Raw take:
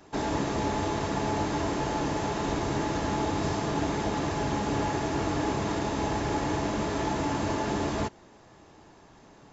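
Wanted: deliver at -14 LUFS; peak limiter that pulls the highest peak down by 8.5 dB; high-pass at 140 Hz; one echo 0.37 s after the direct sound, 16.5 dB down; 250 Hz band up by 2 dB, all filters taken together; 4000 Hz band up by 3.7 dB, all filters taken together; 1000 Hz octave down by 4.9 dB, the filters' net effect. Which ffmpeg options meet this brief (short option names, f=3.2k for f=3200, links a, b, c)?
-af "highpass=140,equalizer=f=250:t=o:g=3.5,equalizer=f=1k:t=o:g=-6.5,equalizer=f=4k:t=o:g=5,alimiter=level_in=1dB:limit=-24dB:level=0:latency=1,volume=-1dB,aecho=1:1:370:0.15,volume=19.5dB"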